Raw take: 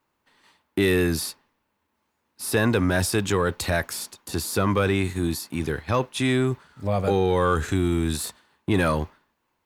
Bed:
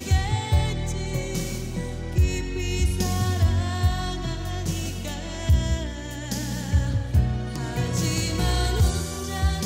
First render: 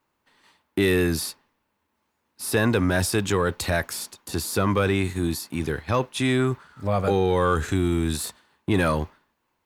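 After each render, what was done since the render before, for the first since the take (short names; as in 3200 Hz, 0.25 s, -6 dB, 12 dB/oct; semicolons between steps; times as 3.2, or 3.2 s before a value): 6.39–7.08 bell 1300 Hz +5.5 dB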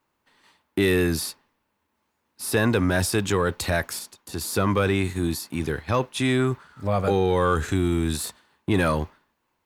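3.99–4.41 gain -4 dB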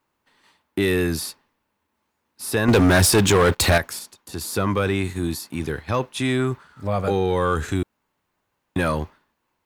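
2.68–3.78 sample leveller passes 3; 7.83–8.76 room tone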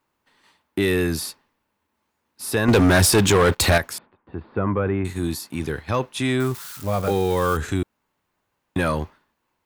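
3.98–5.05 Gaussian blur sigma 4.5 samples; 6.4–7.57 switching spikes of -26 dBFS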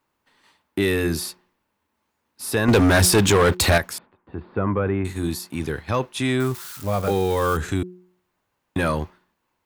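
de-hum 180.9 Hz, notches 2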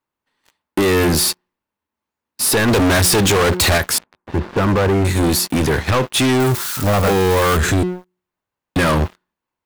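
compressor, threshold -21 dBFS, peak gain reduction 8 dB; sample leveller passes 5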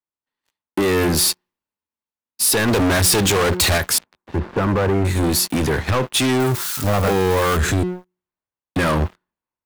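compressor, threshold -16 dBFS, peak gain reduction 3 dB; three-band expander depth 40%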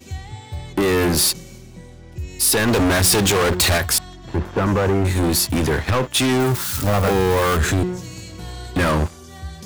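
add bed -10 dB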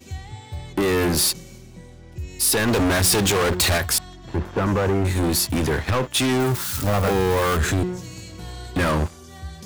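gain -2.5 dB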